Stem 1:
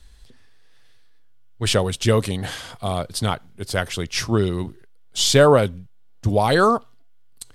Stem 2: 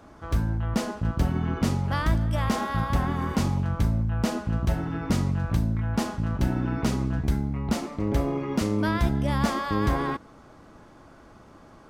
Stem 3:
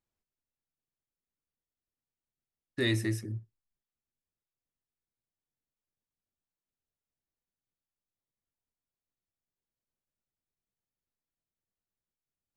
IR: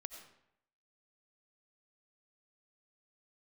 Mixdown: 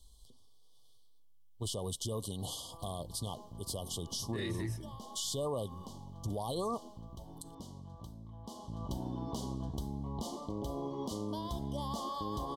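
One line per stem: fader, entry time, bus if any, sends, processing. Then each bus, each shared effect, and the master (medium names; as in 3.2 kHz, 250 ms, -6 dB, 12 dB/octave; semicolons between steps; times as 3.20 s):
-11.0 dB, 0.00 s, bus A, no send, treble shelf 6.3 kHz +11 dB
8.43 s -12.5 dB -> 8.89 s -2 dB, 2.50 s, bus A, send -23 dB, bass shelf 480 Hz -8.5 dB; compression, threshold -32 dBFS, peak gain reduction 8 dB
-3.0 dB, 1.55 s, no bus, no send, chorus voices 2, 0.87 Hz, delay 26 ms, depth 3.9 ms
bus A: 0.0 dB, brick-wall FIR band-stop 1.2–2.9 kHz; compression 2:1, threshold -31 dBFS, peak gain reduction 6.5 dB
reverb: on, RT60 0.75 s, pre-delay 50 ms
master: peak limiter -28 dBFS, peak gain reduction 10.5 dB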